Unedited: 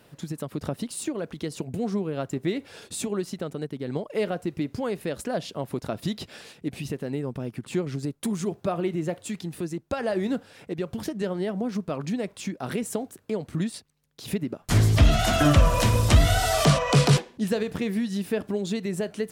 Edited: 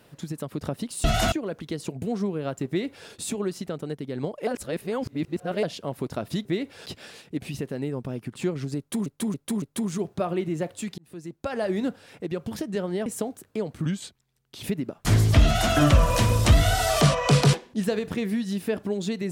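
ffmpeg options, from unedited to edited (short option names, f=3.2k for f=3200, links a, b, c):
-filter_complex "[0:a]asplit=14[a][b][c][d][e][f][g][h][i][j][k][l][m][n];[a]atrim=end=1.042[o];[b]atrim=start=15.088:end=15.372[p];[c]atrim=start=1.038:end=4.192[q];[d]atrim=start=4.188:end=5.352,asetpts=PTS-STARTPTS,areverse[r];[e]atrim=start=5.348:end=6.172[s];[f]atrim=start=2.398:end=2.812[t];[g]atrim=start=6.168:end=8.372[u];[h]atrim=start=8.088:end=8.372[v];[i]atrim=start=8.088:end=8.372[w];[j]atrim=start=8.088:end=9.45,asetpts=PTS-STARTPTS,afade=t=out:st=1.358:d=0.004:c=hsin[x];[k]atrim=start=9.45:end=11.532,asetpts=PTS-STARTPTS,afade=t=in:d=0.81:c=qsin[y];[l]atrim=start=12.798:end=13.594[z];[m]atrim=start=13.59:end=14.27,asetpts=PTS-STARTPTS,asetrate=38367,aresample=44100[aa];[n]atrim=start=14.266[ab];[o][p]acrossfade=d=0.004:c1=hsin:c2=hsin[ac];[ac][q]acrossfade=d=0.004:c1=hsin:c2=hsin[ad];[ad][r]acrossfade=d=0.004:c1=hsin:c2=hsin[ae];[ae][s]acrossfade=d=0.004:c1=hsin:c2=hsin[af];[af][t]acrossfade=d=0.004:c1=hsin:c2=hsin[ag];[ag][u]acrossfade=d=0.004:c1=hsin:c2=hsin[ah];[ah][v]acrossfade=d=0.004:c1=hsin:c2=hsin[ai];[ai][w]acrossfade=d=0.004:c1=hsin:c2=hsin[aj];[x][y]concat=n=2:v=0:a=1[ak];[aj][ak]acrossfade=d=0.004:c1=hsin:c2=hsin[al];[al][z]acrossfade=d=0.004:c1=hsin:c2=hsin[am];[am][aa]acrossfade=d=0.004:c1=hsin:c2=hsin[an];[an][ab]acrossfade=d=0.004:c1=hsin:c2=hsin"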